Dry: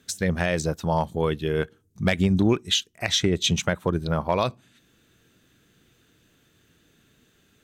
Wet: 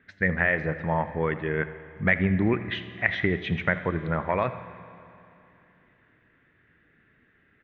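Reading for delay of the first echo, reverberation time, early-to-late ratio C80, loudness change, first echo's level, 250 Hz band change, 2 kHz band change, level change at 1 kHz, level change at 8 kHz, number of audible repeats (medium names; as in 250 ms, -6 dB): 83 ms, 2.9 s, 11.5 dB, -2.0 dB, -17.0 dB, -3.0 dB, +5.5 dB, -1.5 dB, under -35 dB, 2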